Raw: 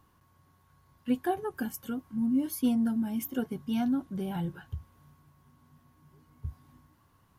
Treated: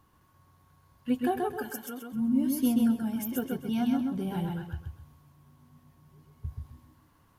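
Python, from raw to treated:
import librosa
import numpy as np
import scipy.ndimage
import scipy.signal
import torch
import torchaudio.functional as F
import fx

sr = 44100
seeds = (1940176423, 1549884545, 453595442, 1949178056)

y = fx.highpass(x, sr, hz=350.0, slope=12, at=(1.59, 2.12))
y = fx.echo_feedback(y, sr, ms=131, feedback_pct=30, wet_db=-3.0)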